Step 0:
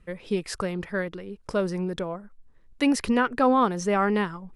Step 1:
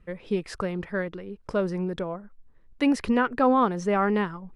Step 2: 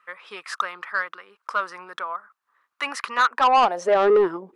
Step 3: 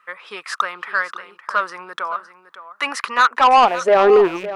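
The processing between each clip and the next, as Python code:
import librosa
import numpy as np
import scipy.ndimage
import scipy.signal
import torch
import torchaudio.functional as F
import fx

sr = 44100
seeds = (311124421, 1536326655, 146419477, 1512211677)

y1 = fx.high_shelf(x, sr, hz=4700.0, db=-11.5)
y2 = fx.filter_sweep_highpass(y1, sr, from_hz=1200.0, to_hz=360.0, start_s=3.23, end_s=4.27, q=4.6)
y2 = 10.0 ** (-15.5 / 20.0) * np.tanh(y2 / 10.0 ** (-15.5 / 20.0))
y2 = F.gain(torch.from_numpy(y2), 3.5).numpy()
y3 = fx.rattle_buzz(y2, sr, strikes_db=-44.0, level_db=-28.0)
y3 = y3 + 10.0 ** (-14.0 / 20.0) * np.pad(y3, (int(561 * sr / 1000.0), 0))[:len(y3)]
y3 = F.gain(torch.from_numpy(y3), 5.0).numpy()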